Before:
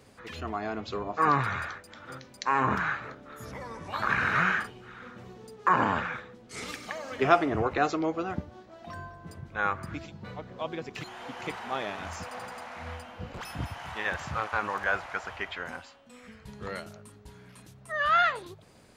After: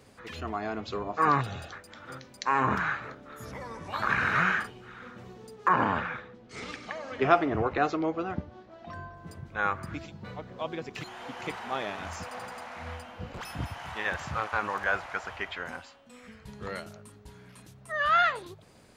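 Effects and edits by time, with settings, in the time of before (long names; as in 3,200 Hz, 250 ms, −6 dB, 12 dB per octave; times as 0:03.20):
0:01.41–0:01.72: gain on a spectral selection 850–2,500 Hz −15 dB
0:05.68–0:09.17: high-frequency loss of the air 100 metres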